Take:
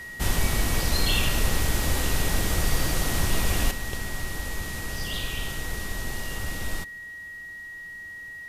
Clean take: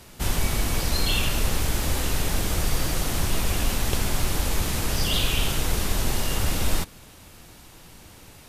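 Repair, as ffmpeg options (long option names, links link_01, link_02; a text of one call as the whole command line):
ffmpeg -i in.wav -af "bandreject=frequency=1900:width=30,asetnsamples=nb_out_samples=441:pad=0,asendcmd='3.71 volume volume 8dB',volume=0dB" out.wav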